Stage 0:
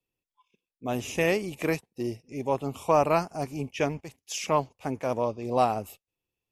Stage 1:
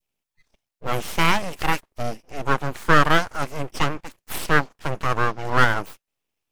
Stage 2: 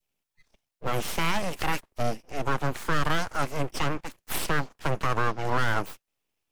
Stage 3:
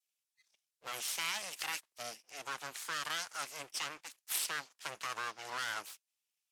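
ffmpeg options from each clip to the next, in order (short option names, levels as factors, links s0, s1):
-af "aeval=exprs='abs(val(0))':c=same,adynamicequalizer=threshold=0.01:dfrequency=1400:dqfactor=0.81:tfrequency=1400:tqfactor=0.81:attack=5:release=100:ratio=0.375:range=2.5:mode=boostabove:tftype=bell,volume=2.11"
-filter_complex "[0:a]acrossover=split=190|3000[s0][s1][s2];[s1]acompressor=threshold=0.126:ratio=6[s3];[s0][s3][s2]amix=inputs=3:normalize=0,alimiter=limit=0.168:level=0:latency=1:release=41"
-af "bandpass=f=7600:t=q:w=0.59:csg=0"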